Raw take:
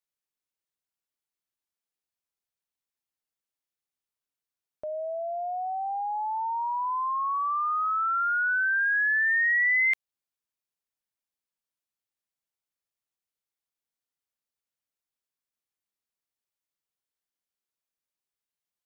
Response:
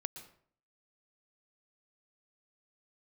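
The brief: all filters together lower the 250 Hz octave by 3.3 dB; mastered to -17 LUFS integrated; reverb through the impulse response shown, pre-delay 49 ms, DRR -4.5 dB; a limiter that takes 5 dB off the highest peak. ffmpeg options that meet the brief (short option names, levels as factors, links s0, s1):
-filter_complex "[0:a]equalizer=f=250:t=o:g=-4.5,alimiter=level_in=1.06:limit=0.0631:level=0:latency=1,volume=0.944,asplit=2[s0][s1];[1:a]atrim=start_sample=2205,adelay=49[s2];[s1][s2]afir=irnorm=-1:irlink=0,volume=2[s3];[s0][s3]amix=inputs=2:normalize=0,volume=1.78"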